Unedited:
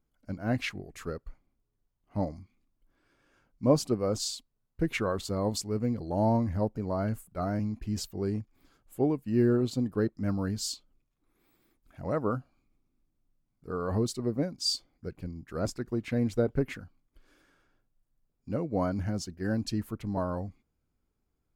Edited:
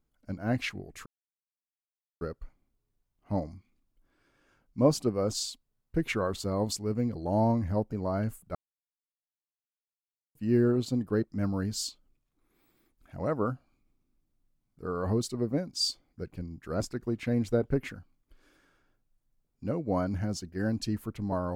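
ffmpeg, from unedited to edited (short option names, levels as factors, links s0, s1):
-filter_complex "[0:a]asplit=4[s0][s1][s2][s3];[s0]atrim=end=1.06,asetpts=PTS-STARTPTS,afade=t=out:st=1.056:d=0.004:c=hsin,apad=pad_dur=1.15[s4];[s1]atrim=start=1.06:end=7.4,asetpts=PTS-STARTPTS,afade=t=in:d=0.004:c=hsin,afade=t=out:st=6.336:d=0.004:c=hsin[s5];[s2]atrim=start=7.4:end=9.2,asetpts=PTS-STARTPTS,volume=0[s6];[s3]atrim=start=9.2,asetpts=PTS-STARTPTS,afade=t=in:d=0.004:c=hsin[s7];[s4][s5][s6][s7]concat=n=4:v=0:a=1"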